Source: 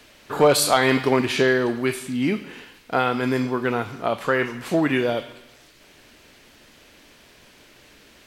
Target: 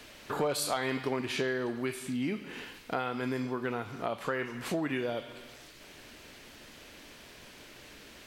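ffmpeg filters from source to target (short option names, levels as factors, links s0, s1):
-af "acompressor=threshold=0.0178:ratio=2.5"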